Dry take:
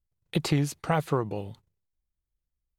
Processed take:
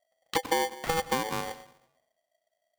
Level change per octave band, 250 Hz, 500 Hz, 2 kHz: -8.0 dB, -0.5 dB, +4.0 dB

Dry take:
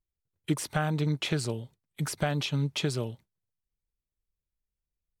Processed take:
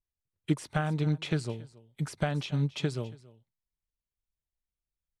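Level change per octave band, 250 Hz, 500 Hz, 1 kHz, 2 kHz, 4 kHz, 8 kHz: -0.5 dB, -2.0 dB, -2.5 dB, -3.0 dB, -6.0 dB, -9.0 dB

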